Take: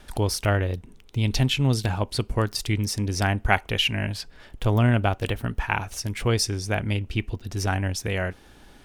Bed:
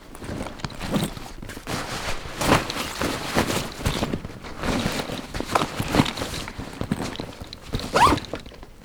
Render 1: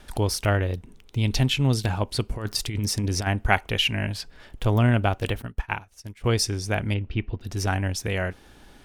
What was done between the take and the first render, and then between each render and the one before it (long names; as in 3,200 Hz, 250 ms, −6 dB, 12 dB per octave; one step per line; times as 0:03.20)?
0:02.32–0:03.27: compressor whose output falls as the input rises −25 dBFS, ratio −0.5
0:05.42–0:06.24: expander for the loud parts 2.5 to 1, over −35 dBFS
0:06.94–0:07.41: high-frequency loss of the air 260 metres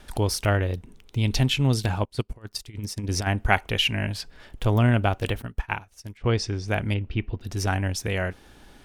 0:02.05–0:03.09: expander for the loud parts 2.5 to 1, over −36 dBFS
0:06.17–0:06.68: high-frequency loss of the air 130 metres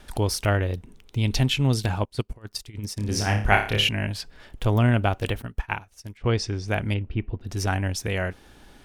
0:02.94–0:03.89: flutter between parallel walls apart 4.9 metres, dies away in 0.41 s
0:07.03–0:07.49: high-shelf EQ 2,700 Hz −12 dB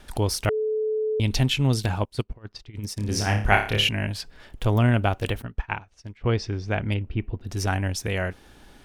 0:00.49–0:01.20: beep over 433 Hz −22 dBFS
0:02.24–0:02.74: high-frequency loss of the air 200 metres
0:05.44–0:06.92: high-frequency loss of the air 110 metres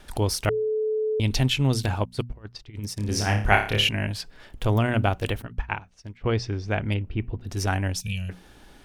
mains-hum notches 60/120/180/240 Hz
0:08.01–0:08.30: gain on a spectral selection 230–2,300 Hz −25 dB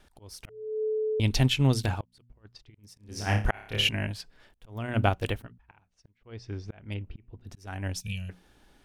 volume swells 383 ms
expander for the loud parts 1.5 to 1, over −38 dBFS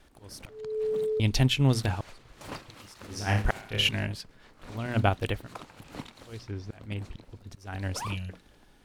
mix in bed −22 dB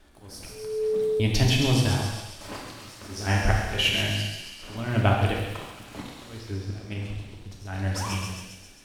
delay with a high-pass on its return 134 ms, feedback 65%, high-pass 3,900 Hz, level −3.5 dB
reverb whose tail is shaped and stops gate 420 ms falling, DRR −1.5 dB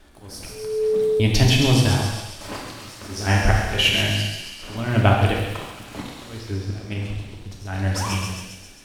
level +5 dB
brickwall limiter −3 dBFS, peak gain reduction 1 dB